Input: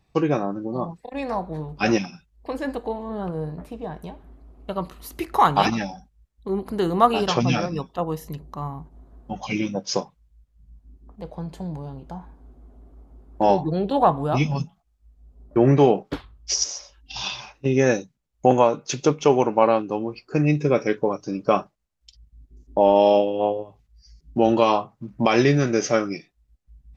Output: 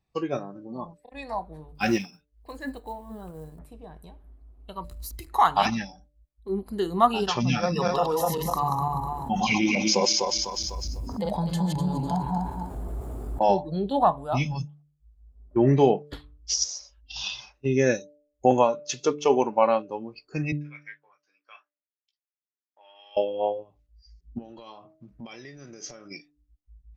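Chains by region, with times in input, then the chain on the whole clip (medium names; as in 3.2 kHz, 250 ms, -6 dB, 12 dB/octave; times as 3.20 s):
1.75–3.59 s: Bessel low-pass 7.7 kHz + short-mantissa float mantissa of 4-bit
4.84–5.28 s: hysteresis with a dead band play -42 dBFS + tone controls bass +10 dB, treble +8 dB + compression 3:1, threshold -30 dBFS
7.63–13.49 s: backward echo that repeats 125 ms, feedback 51%, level -1 dB + high-pass 220 Hz 6 dB/octave + level flattener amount 70%
20.52–23.17 s: ladder band-pass 2.1 kHz, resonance 45% + doubling 17 ms -6 dB
24.38–26.11 s: de-hum 317.3 Hz, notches 2 + compression 12:1, threshold -28 dBFS
whole clip: spectral noise reduction 10 dB; de-hum 147.3 Hz, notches 4; trim -2.5 dB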